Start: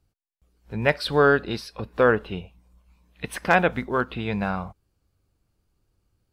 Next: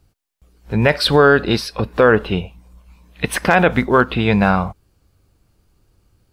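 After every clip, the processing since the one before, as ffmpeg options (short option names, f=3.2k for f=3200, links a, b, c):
-af "alimiter=level_in=13dB:limit=-1dB:release=50:level=0:latency=1,volume=-1dB"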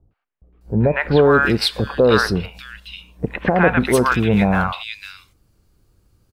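-filter_complex "[0:a]acrossover=split=820|2600[a][b][c];[b]adelay=110[d];[c]adelay=610[e];[a][d][e]amix=inputs=3:normalize=0"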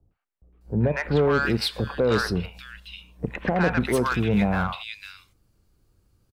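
-filter_complex "[0:a]acrossover=split=260[a][b];[a]asplit=2[c][d];[d]adelay=34,volume=-12dB[e];[c][e]amix=inputs=2:normalize=0[f];[b]asoftclip=type=tanh:threshold=-11.5dB[g];[f][g]amix=inputs=2:normalize=0,volume=-5.5dB"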